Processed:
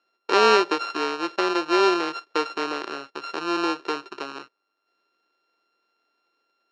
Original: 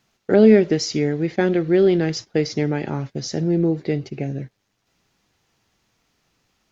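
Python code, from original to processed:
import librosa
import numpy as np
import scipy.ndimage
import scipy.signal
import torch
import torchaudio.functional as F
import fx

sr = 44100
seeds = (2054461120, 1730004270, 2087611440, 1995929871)

y = np.r_[np.sort(x[:len(x) // 32 * 32].reshape(-1, 32), axis=1).ravel(), x[len(x) // 32 * 32:]]
y = scipy.signal.sosfilt(scipy.signal.ellip(3, 1.0, 80, [350.0, 5100.0], 'bandpass', fs=sr, output='sos'), y)
y = y * 10.0 ** (-3.0 / 20.0)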